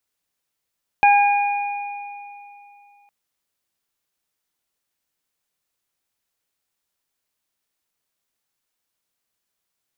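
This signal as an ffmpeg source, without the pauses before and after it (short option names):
-f lavfi -i "aevalsrc='0.316*pow(10,-3*t/2.82)*sin(2*PI*814*t)+0.0631*pow(10,-3*t/1.55)*sin(2*PI*1628*t)+0.15*pow(10,-3*t/2.74)*sin(2*PI*2442*t)':d=2.06:s=44100"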